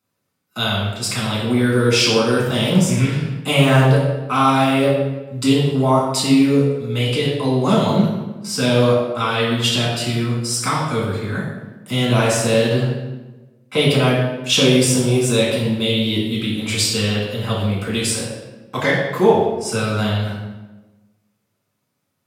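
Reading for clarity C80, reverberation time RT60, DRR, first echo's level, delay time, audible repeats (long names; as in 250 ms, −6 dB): 4.0 dB, 1.1 s, −5.5 dB, no echo audible, no echo audible, no echo audible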